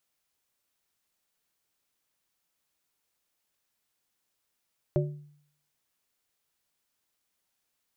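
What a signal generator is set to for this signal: glass hit plate, lowest mode 147 Hz, modes 3, decay 0.64 s, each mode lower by 1.5 dB, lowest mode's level -22 dB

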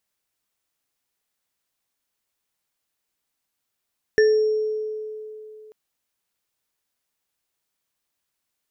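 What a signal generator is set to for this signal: sine partials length 1.54 s, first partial 431 Hz, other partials 1770/5560 Hz, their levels -5/-19 dB, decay 2.97 s, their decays 0.29/1.11 s, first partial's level -12 dB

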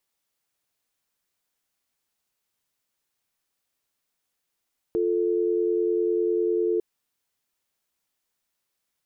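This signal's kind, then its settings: call progress tone dial tone, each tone -23.5 dBFS 1.85 s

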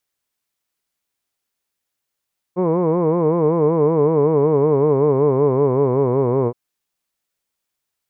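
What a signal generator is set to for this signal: formant-synthesis vowel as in hood, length 3.97 s, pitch 173 Hz, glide -5.5 st, vibrato depth 1.25 st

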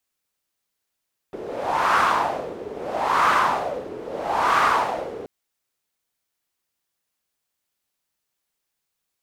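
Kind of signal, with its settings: wind-like swept noise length 3.93 s, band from 420 Hz, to 1200 Hz, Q 3.9, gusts 3, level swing 16 dB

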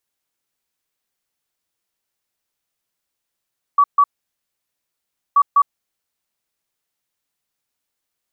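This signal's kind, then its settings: beep pattern sine 1140 Hz, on 0.06 s, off 0.14 s, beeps 2, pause 1.32 s, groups 2, -8.5 dBFS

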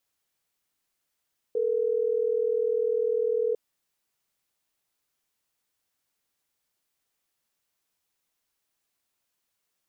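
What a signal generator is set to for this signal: call progress tone ringback tone, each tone -25.5 dBFS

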